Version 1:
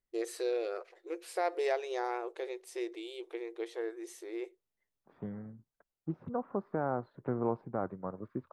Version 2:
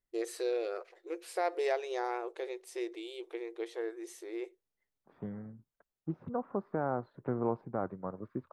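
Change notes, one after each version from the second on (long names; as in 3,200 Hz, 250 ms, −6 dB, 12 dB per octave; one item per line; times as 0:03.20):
nothing changed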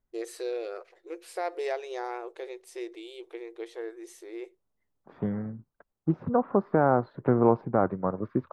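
second voice +11.0 dB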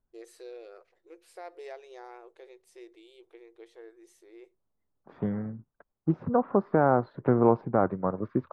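first voice −11.5 dB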